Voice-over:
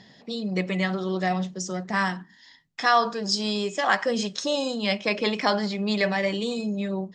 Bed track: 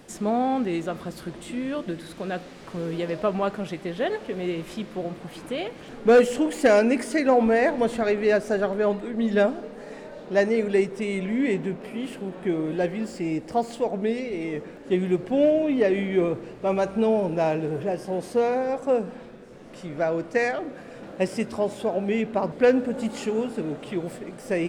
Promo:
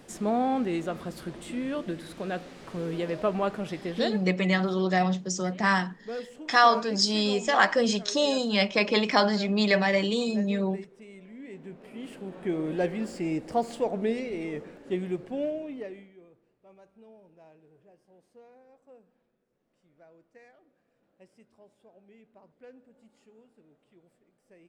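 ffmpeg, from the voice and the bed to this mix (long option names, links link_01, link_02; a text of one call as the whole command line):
ffmpeg -i stem1.wav -i stem2.wav -filter_complex "[0:a]adelay=3700,volume=1dB[link_01];[1:a]volume=15.5dB,afade=type=out:start_time=4.02:duration=0.31:silence=0.125893,afade=type=in:start_time=11.49:duration=1.29:silence=0.125893,afade=type=out:start_time=14.11:duration=2.03:silence=0.0334965[link_02];[link_01][link_02]amix=inputs=2:normalize=0" out.wav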